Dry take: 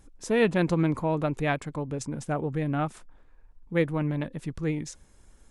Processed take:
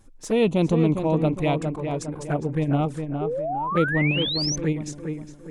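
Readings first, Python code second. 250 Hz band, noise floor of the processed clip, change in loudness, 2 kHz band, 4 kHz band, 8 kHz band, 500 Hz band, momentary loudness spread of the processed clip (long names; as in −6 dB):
+5.0 dB, −44 dBFS, +4.5 dB, +4.5 dB, +14.5 dB, +8.5 dB, +4.5 dB, 9 LU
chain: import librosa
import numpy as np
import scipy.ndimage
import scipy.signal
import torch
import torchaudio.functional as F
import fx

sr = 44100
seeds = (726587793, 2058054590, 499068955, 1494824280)

p1 = fx.level_steps(x, sr, step_db=14)
p2 = x + (p1 * 10.0 ** (1.0 / 20.0))
p3 = fx.env_flanger(p2, sr, rest_ms=9.5, full_db=-18.0)
p4 = fx.echo_tape(p3, sr, ms=408, feedback_pct=46, wet_db=-4.0, lp_hz=1700.0, drive_db=13.0, wow_cents=5)
y = fx.spec_paint(p4, sr, seeds[0], shape='rise', start_s=3.21, length_s=1.35, low_hz=390.0, high_hz=6300.0, level_db=-27.0)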